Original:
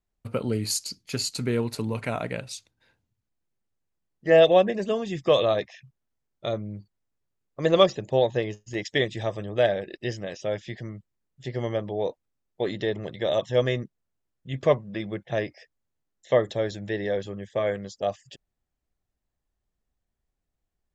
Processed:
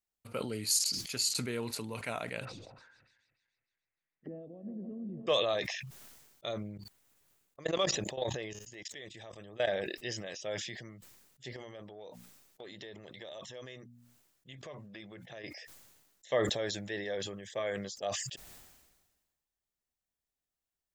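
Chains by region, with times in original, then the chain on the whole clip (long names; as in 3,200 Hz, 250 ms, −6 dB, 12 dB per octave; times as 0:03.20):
0:02.45–0:05.27: feedback delay that plays each chunk backwards 146 ms, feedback 64%, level −13 dB + downward compressor 5 to 1, threshold −29 dBFS + envelope-controlled low-pass 240–2,100 Hz down, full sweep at −33.5 dBFS
0:06.63–0:09.84: output level in coarse steps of 19 dB + parametric band 5,100 Hz −3 dB 0.7 octaves
0:11.56–0:15.44: mains-hum notches 60/120/180/240 Hz + downward compressor 5 to 1, threshold −35 dBFS
whole clip: spectral tilt +2.5 dB per octave; level that may fall only so fast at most 43 dB per second; level −8 dB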